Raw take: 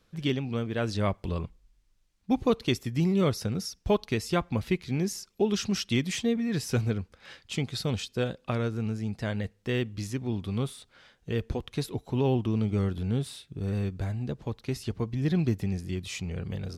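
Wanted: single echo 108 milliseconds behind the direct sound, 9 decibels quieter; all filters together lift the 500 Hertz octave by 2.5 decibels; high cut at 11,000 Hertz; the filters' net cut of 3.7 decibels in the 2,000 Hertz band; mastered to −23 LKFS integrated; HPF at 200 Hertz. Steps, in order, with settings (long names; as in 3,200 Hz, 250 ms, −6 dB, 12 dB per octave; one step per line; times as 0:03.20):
high-pass filter 200 Hz
low-pass filter 11,000 Hz
parametric band 500 Hz +3.5 dB
parametric band 2,000 Hz −5 dB
single-tap delay 108 ms −9 dB
level +8 dB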